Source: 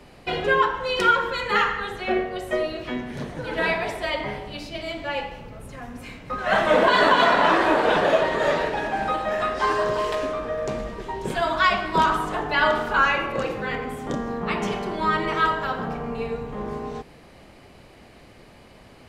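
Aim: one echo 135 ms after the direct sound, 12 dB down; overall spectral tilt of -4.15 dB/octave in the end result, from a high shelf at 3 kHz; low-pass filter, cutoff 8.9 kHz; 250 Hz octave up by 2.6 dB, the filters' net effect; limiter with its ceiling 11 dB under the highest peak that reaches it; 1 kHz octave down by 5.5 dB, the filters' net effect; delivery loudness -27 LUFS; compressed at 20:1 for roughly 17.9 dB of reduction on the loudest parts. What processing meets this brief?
low-pass 8.9 kHz; peaking EQ 250 Hz +4 dB; peaking EQ 1 kHz -6.5 dB; treble shelf 3 kHz -5 dB; compression 20:1, threshold -33 dBFS; peak limiter -33.5 dBFS; delay 135 ms -12 dB; trim +14.5 dB

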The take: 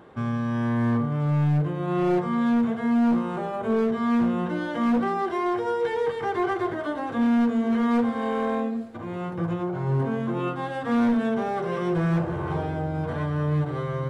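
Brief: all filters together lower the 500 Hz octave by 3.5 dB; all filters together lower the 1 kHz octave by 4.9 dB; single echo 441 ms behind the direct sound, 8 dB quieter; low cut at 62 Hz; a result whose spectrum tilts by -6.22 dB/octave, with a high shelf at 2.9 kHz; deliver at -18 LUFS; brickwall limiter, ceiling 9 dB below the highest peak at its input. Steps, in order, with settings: high-pass 62 Hz; peaking EQ 500 Hz -3.5 dB; peaking EQ 1 kHz -4 dB; treble shelf 2.9 kHz -8.5 dB; peak limiter -26 dBFS; delay 441 ms -8 dB; trim +14 dB

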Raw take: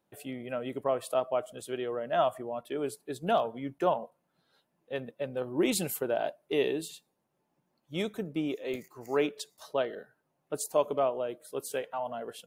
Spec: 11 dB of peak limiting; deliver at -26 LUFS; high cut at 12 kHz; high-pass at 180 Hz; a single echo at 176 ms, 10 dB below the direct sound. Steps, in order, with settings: high-pass 180 Hz; low-pass 12 kHz; peak limiter -24.5 dBFS; delay 176 ms -10 dB; trim +10 dB

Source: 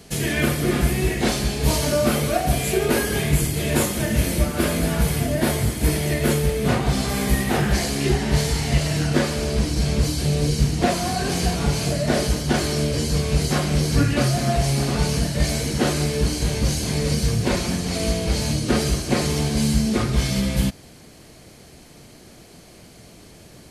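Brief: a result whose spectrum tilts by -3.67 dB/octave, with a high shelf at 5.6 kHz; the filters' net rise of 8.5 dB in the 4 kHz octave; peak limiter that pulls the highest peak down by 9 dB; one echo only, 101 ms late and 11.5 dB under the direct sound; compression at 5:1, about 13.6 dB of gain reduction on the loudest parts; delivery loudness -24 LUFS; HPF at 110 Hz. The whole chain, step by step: high-pass 110 Hz; peaking EQ 4 kHz +7.5 dB; treble shelf 5.6 kHz +7 dB; compression 5:1, threshold -31 dBFS; peak limiter -25 dBFS; delay 101 ms -11.5 dB; trim +9.5 dB

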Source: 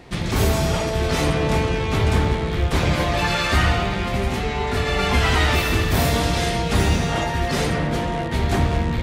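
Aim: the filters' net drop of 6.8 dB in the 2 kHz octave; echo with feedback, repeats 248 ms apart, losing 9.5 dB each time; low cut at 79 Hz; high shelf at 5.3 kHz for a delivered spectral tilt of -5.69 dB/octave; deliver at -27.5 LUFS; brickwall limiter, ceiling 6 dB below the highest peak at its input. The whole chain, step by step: high-pass 79 Hz; peaking EQ 2 kHz -8 dB; treble shelf 5.3 kHz -4 dB; peak limiter -14 dBFS; feedback delay 248 ms, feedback 33%, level -9.5 dB; trim -4 dB

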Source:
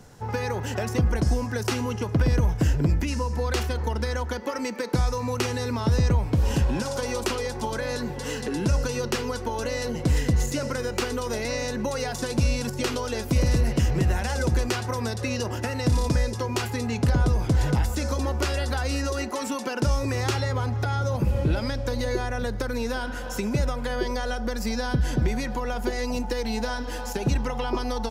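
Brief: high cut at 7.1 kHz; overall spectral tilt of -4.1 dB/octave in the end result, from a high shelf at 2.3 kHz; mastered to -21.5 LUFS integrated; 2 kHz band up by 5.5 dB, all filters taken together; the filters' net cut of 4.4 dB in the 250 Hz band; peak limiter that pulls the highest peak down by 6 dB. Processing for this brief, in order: low-pass 7.1 kHz; peaking EQ 250 Hz -6 dB; peaking EQ 2 kHz +3.5 dB; treble shelf 2.3 kHz +7.5 dB; trim +5.5 dB; peak limiter -10.5 dBFS

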